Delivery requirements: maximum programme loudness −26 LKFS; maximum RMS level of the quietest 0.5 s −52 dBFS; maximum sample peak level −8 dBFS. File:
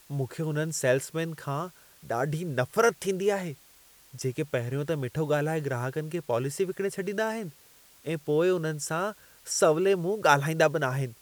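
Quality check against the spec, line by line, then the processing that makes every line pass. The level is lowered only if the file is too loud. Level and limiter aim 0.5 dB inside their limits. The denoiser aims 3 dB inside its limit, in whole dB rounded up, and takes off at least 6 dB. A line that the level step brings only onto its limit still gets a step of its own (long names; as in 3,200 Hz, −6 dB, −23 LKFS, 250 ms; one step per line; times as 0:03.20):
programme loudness −28.0 LKFS: in spec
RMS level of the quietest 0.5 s −57 dBFS: in spec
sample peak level −5.0 dBFS: out of spec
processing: brickwall limiter −8.5 dBFS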